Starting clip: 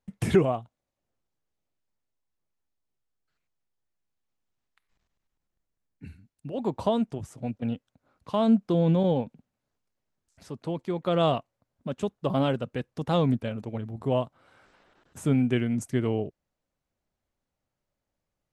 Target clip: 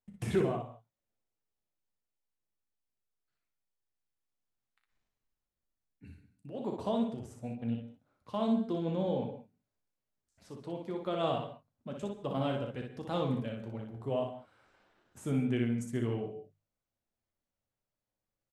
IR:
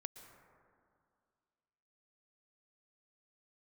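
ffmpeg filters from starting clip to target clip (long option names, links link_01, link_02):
-filter_complex "[0:a]bandreject=frequency=50:width_type=h:width=6,bandreject=frequency=100:width_type=h:width=6,bandreject=frequency=150:width_type=h:width=6[link_01];[1:a]atrim=start_sample=2205,afade=type=out:start_time=0.21:duration=0.01,atrim=end_sample=9702[link_02];[link_01][link_02]afir=irnorm=-1:irlink=0,flanger=delay=8.2:depth=1.5:regen=-53:speed=0.25:shape=triangular,aecho=1:1:35|60:0.282|0.596"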